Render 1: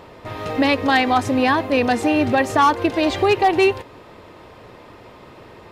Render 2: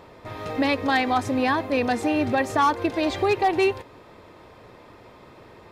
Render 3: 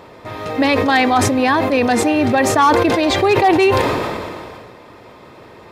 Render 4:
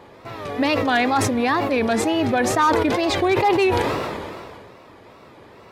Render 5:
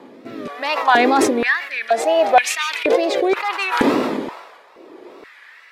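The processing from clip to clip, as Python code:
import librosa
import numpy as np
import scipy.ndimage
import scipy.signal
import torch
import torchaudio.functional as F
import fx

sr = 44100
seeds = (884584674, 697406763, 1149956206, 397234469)

y1 = fx.notch(x, sr, hz=2900.0, q=13.0)
y1 = F.gain(torch.from_numpy(y1), -5.0).numpy()
y2 = fx.low_shelf(y1, sr, hz=61.0, db=-9.5)
y2 = fx.sustainer(y2, sr, db_per_s=27.0)
y2 = F.gain(torch.from_numpy(y2), 7.0).numpy()
y3 = fx.wow_flutter(y2, sr, seeds[0], rate_hz=2.1, depth_cents=140.0)
y3 = F.gain(torch.from_numpy(y3), -5.0).numpy()
y4 = fx.rotary(y3, sr, hz=0.7)
y4 = fx.filter_held_highpass(y4, sr, hz=2.1, low_hz=250.0, high_hz=2500.0)
y4 = F.gain(torch.from_numpy(y4), 3.0).numpy()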